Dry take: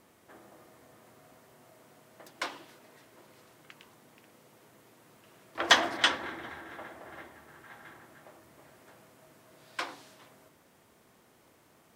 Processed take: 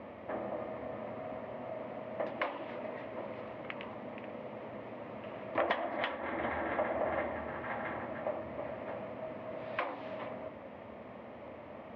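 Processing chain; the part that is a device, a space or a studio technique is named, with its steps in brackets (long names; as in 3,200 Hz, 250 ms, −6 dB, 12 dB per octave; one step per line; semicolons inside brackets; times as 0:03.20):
bass amplifier (downward compressor 6 to 1, threshold −45 dBFS, peak gain reduction 27 dB; loudspeaker in its box 61–2,400 Hz, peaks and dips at 76 Hz +3 dB, 160 Hz −8 dB, 220 Hz +5 dB, 370 Hz −5 dB, 580 Hz +9 dB, 1,500 Hz −9 dB)
level +14.5 dB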